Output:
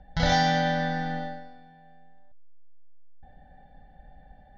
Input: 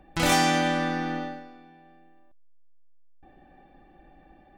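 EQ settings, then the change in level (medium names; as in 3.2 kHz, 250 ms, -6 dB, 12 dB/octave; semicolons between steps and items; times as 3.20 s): steep low-pass 7.2 kHz 96 dB/octave; bass shelf 290 Hz +8 dB; static phaser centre 1.7 kHz, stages 8; 0.0 dB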